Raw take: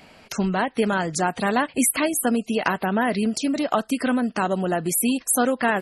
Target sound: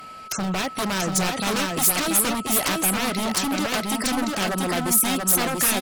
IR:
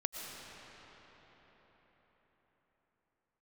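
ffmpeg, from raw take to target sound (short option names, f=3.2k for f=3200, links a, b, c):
-filter_complex "[0:a]aeval=exprs='0.0841*(abs(mod(val(0)/0.0841+3,4)-2)-1)':c=same,aeval=exprs='val(0)+0.0112*sin(2*PI*1300*n/s)':c=same,aemphasis=mode=production:type=cd,asplit=2[a][b];[b]aecho=0:1:686:0.708[c];[a][c]amix=inputs=2:normalize=0,volume=1dB"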